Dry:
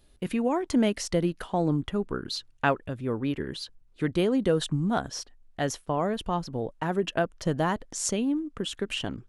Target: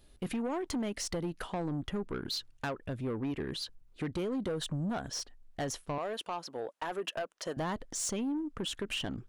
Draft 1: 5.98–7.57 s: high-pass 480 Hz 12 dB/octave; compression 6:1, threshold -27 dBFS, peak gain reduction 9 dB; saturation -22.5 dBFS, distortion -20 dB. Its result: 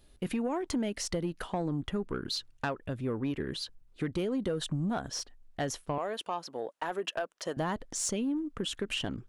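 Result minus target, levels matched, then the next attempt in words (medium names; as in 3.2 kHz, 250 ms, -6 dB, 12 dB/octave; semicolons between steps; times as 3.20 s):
saturation: distortion -8 dB
5.98–7.57 s: high-pass 480 Hz 12 dB/octave; compression 6:1, threshold -27 dBFS, peak gain reduction 9 dB; saturation -29 dBFS, distortion -12 dB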